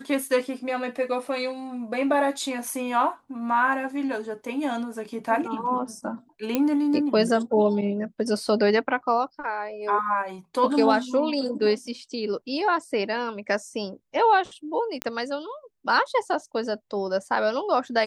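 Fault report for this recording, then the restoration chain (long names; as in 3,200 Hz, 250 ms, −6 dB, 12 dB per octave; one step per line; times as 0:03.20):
0:06.55: click −9 dBFS
0:15.02: click −10 dBFS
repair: click removal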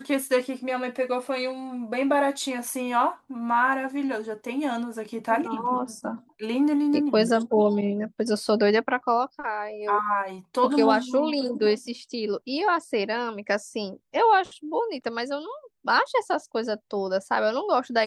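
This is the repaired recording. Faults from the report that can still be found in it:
none of them is left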